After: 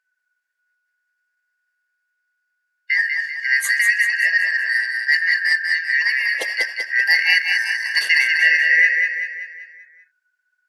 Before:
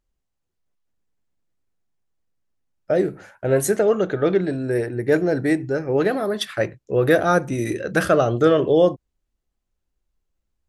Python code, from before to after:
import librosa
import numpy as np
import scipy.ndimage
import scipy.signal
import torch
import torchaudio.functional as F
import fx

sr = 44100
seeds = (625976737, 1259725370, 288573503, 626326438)

y = fx.band_shuffle(x, sr, order='3142')
y = scipy.signal.sosfilt(scipy.signal.butter(2, 480.0, 'highpass', fs=sr, output='sos'), y)
y = fx.dmg_crackle(y, sr, seeds[0], per_s=120.0, level_db=-38.0, at=(7.0, 7.68), fade=0.02)
y = fx.echo_feedback(y, sr, ms=193, feedback_pct=49, wet_db=-4.5)